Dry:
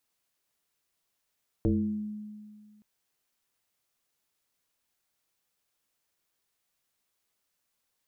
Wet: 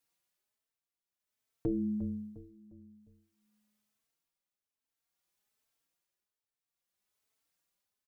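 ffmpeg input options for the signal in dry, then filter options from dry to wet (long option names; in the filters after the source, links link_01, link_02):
-f lavfi -i "aevalsrc='0.0944*pow(10,-3*t/1.95)*sin(2*PI*211*t+2*pow(10,-3*t/0.87)*sin(2*PI*0.56*211*t))':duration=1.17:sample_rate=44100"
-filter_complex "[0:a]tremolo=f=0.54:d=0.79,asplit=2[link_01][link_02];[link_02]adelay=354,lowpass=frequency=920:poles=1,volume=-10.5dB,asplit=2[link_03][link_04];[link_04]adelay=354,lowpass=frequency=920:poles=1,volume=0.42,asplit=2[link_05][link_06];[link_06]adelay=354,lowpass=frequency=920:poles=1,volume=0.42,asplit=2[link_07][link_08];[link_08]adelay=354,lowpass=frequency=920:poles=1,volume=0.42[link_09];[link_03][link_05][link_07][link_09]amix=inputs=4:normalize=0[link_10];[link_01][link_10]amix=inputs=2:normalize=0,asplit=2[link_11][link_12];[link_12]adelay=3.9,afreqshift=1.2[link_13];[link_11][link_13]amix=inputs=2:normalize=1"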